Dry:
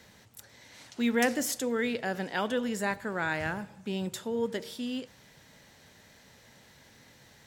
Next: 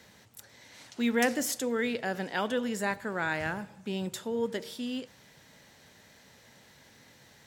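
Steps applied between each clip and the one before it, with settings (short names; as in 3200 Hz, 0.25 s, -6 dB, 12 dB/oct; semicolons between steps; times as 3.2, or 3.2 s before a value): low shelf 63 Hz -7.5 dB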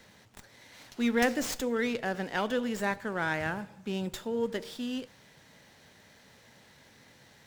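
running maximum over 3 samples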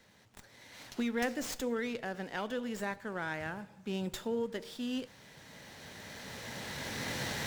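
recorder AGC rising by 9.9 dB/s; gain -7 dB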